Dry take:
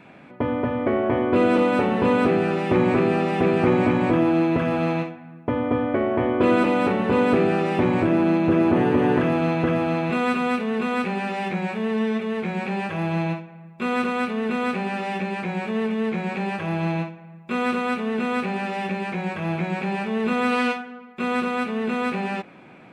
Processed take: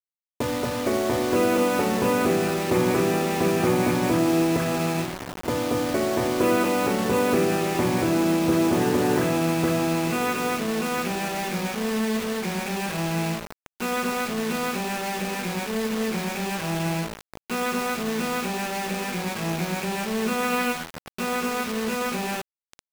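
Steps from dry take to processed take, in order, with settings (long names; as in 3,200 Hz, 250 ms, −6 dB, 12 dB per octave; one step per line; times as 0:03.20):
mains-hum notches 50/100/150/200/250/300 Hz
slap from a distant wall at 230 metres, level −13 dB
bit reduction 5 bits
level −2 dB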